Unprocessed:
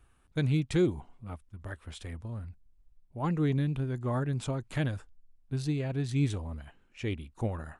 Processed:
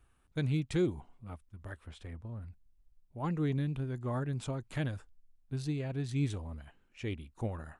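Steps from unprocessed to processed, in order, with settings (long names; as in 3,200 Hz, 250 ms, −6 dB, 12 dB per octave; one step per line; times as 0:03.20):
0:01.86–0:02.41: high-shelf EQ 4,500 Hz → 2,700 Hz −10.5 dB
level −4 dB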